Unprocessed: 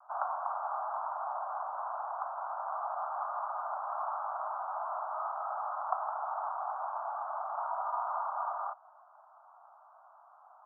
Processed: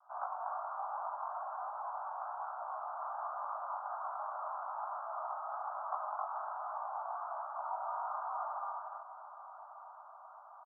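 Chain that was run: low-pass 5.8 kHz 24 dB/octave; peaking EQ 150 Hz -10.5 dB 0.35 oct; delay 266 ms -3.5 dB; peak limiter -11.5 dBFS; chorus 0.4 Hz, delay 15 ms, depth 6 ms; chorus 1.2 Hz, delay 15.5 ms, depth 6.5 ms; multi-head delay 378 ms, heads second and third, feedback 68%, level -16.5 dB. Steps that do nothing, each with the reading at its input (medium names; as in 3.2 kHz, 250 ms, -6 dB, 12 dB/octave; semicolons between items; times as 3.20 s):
low-pass 5.8 kHz: input has nothing above 1.6 kHz; peaking EQ 150 Hz: input has nothing below 510 Hz; peak limiter -11.5 dBFS: peak at its input -15.0 dBFS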